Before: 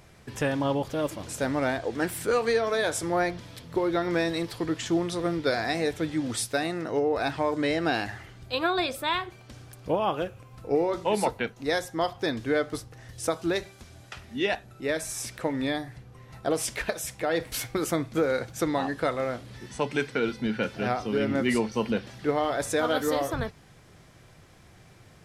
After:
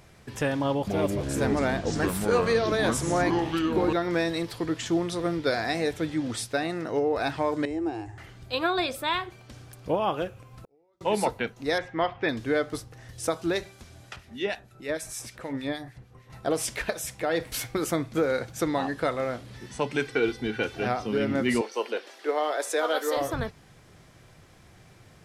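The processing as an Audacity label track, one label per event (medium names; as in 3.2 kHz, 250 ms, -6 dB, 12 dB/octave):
0.590000	3.930000	ever faster or slower copies 279 ms, each echo -6 st, echoes 3
6.130000	6.680000	low-pass 9.1 kHz -> 4 kHz 6 dB/octave
7.650000	8.180000	FFT filter 110 Hz 0 dB, 200 Hz -27 dB, 330 Hz +3 dB, 590 Hz -16 dB, 840 Hz -4 dB, 1.4 kHz -19 dB, 2.6 kHz -16 dB, 4.1 kHz -24 dB, 7.7 kHz -6 dB, 12 kHz -22 dB
10.470000	11.010000	inverted gate shuts at -33 dBFS, range -41 dB
11.780000	12.290000	resonant low-pass 2.3 kHz, resonance Q 2.4
14.160000	16.300000	harmonic tremolo 6.5 Hz, crossover 1.7 kHz
20.050000	20.850000	comb 2.6 ms
21.610000	23.170000	steep high-pass 340 Hz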